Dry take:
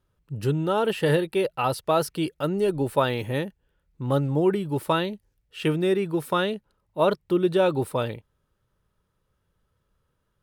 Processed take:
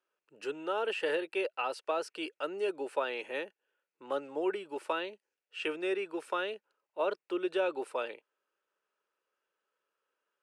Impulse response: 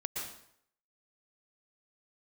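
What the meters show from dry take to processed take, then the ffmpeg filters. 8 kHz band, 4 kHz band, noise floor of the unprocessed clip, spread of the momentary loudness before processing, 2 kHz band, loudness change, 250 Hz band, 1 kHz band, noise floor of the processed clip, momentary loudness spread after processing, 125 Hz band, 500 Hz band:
below −10 dB, −8.0 dB, −74 dBFS, 10 LU, −5.0 dB, −10.0 dB, −14.0 dB, −9.5 dB, below −85 dBFS, 9 LU, below −35 dB, −9.5 dB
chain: -filter_complex "[0:a]highpass=frequency=370:width=0.5412,highpass=frequency=370:width=1.3066,equalizer=frequency=1500:width_type=q:width=4:gain=5,equalizer=frequency=2600:width_type=q:width=4:gain=8,equalizer=frequency=3700:width_type=q:width=4:gain=-4,lowpass=frequency=8500:width=0.5412,lowpass=frequency=8500:width=1.3066,acrossover=split=480[link_01][link_02];[link_02]acompressor=threshold=-23dB:ratio=6[link_03];[link_01][link_03]amix=inputs=2:normalize=0,volume=-7.5dB"

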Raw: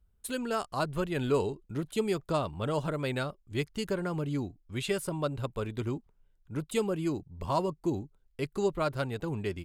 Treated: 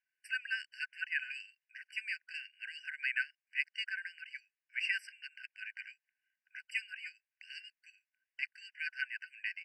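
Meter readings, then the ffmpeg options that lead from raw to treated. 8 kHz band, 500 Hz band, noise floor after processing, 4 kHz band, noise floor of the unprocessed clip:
−17.0 dB, below −40 dB, below −85 dBFS, −2.5 dB, −69 dBFS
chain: -af "lowpass=2600,afftfilt=real='re*eq(mod(floor(b*sr/1024/1500),2),1)':imag='im*eq(mod(floor(b*sr/1024/1500),2),1)':win_size=1024:overlap=0.75,volume=8.5dB"

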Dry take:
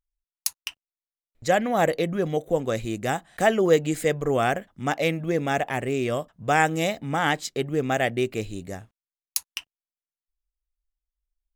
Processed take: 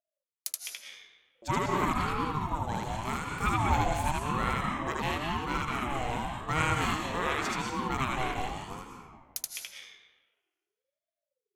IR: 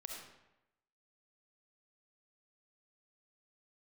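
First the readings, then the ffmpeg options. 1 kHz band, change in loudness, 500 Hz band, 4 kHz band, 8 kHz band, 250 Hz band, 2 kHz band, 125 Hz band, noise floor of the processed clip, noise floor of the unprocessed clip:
−2.5 dB, −6.5 dB, −14.0 dB, −4.0 dB, −5.5 dB, −7.0 dB, −5.5 dB, −3.0 dB, below −85 dBFS, below −85 dBFS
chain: -filter_complex "[0:a]asplit=2[link_01][link_02];[link_02]highpass=frequency=450:poles=1[link_03];[1:a]atrim=start_sample=2205,asetrate=25137,aresample=44100,adelay=77[link_04];[link_03][link_04]afir=irnorm=-1:irlink=0,volume=3dB[link_05];[link_01][link_05]amix=inputs=2:normalize=0,aeval=exprs='val(0)*sin(2*PI*500*n/s+500*0.3/0.9*sin(2*PI*0.9*n/s))':channel_layout=same,volume=-7dB"

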